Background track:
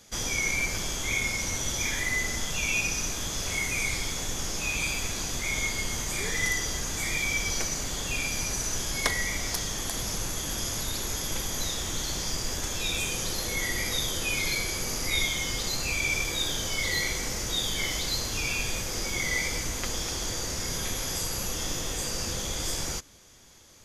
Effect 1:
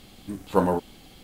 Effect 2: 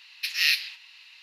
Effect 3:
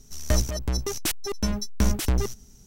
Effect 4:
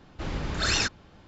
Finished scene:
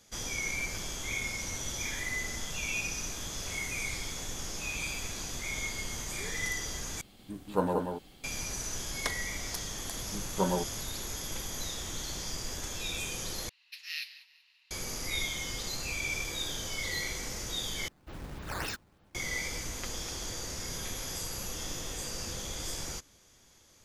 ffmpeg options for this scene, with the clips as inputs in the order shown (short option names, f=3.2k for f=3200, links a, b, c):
-filter_complex "[1:a]asplit=2[a][b];[0:a]volume=-6.5dB[c];[a]aecho=1:1:183:0.562[d];[b]aecho=1:1:5.3:0.68[e];[2:a]aecho=1:1:190|380|570:0.119|0.0428|0.0154[f];[4:a]acrusher=samples=9:mix=1:aa=0.000001:lfo=1:lforange=14.4:lforate=3.3[g];[c]asplit=4[h][i][j][k];[h]atrim=end=7.014[l];[d]atrim=end=1.23,asetpts=PTS-STARTPTS,volume=-7.5dB[m];[i]atrim=start=8.236:end=13.494[n];[f]atrim=end=1.22,asetpts=PTS-STARTPTS,volume=-16dB[o];[j]atrim=start=14.706:end=17.884[p];[g]atrim=end=1.27,asetpts=PTS-STARTPTS,volume=-11dB[q];[k]atrim=start=19.146[r];[e]atrim=end=1.23,asetpts=PTS-STARTPTS,volume=-9dB,afade=t=in:d=0.004:c=hsin,afade=t=out:st=1.226:d=0.004:c=hsin,adelay=9840[s];[l][m]acrossfade=d=0.004:c1=hsin:c2=hsin[t];[t][n]acrossfade=d=0.004:c1=hsin:c2=hsin[u];[u][o]acrossfade=d=0.004:c1=hsin:c2=hsin[v];[v][p]acrossfade=d=0.004:c1=hsin:c2=hsin[w];[w][q]acrossfade=d=0.004:c1=hsin:c2=hsin[x];[x][r]acrossfade=d=0.004:c1=hsin:c2=hsin[y];[y][s]amix=inputs=2:normalize=0"